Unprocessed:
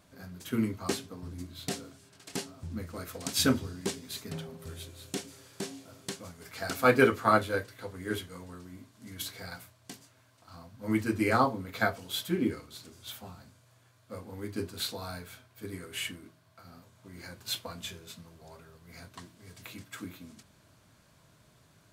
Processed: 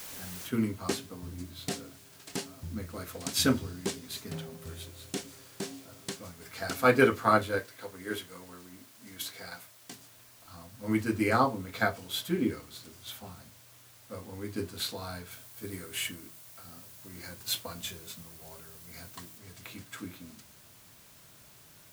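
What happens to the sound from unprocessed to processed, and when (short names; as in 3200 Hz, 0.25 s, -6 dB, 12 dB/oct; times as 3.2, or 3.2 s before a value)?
0.47 noise floor step -44 dB -57 dB
7.59–9.92 HPF 280 Hz 6 dB/oct
15.31–19.38 high shelf 7600 Hz +7.5 dB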